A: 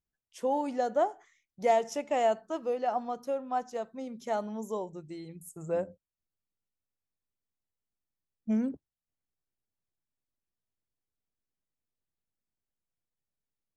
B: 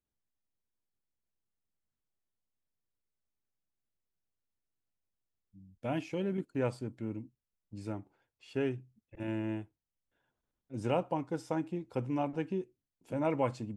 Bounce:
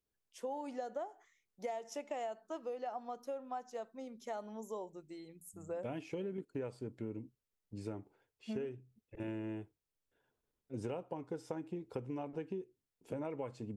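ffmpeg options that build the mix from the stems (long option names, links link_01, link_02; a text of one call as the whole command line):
ffmpeg -i stem1.wav -i stem2.wav -filter_complex "[0:a]highpass=240,volume=-6dB[link_01];[1:a]equalizer=frequency=430:width_type=o:width=0.4:gain=9,volume=-1.5dB[link_02];[link_01][link_02]amix=inputs=2:normalize=0,acompressor=threshold=-37dB:ratio=12" out.wav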